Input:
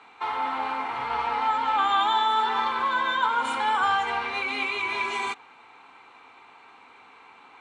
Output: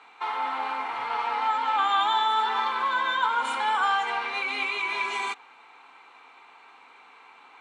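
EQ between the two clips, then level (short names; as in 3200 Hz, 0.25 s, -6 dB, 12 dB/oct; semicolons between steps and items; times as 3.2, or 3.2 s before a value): HPF 470 Hz 6 dB/oct; 0.0 dB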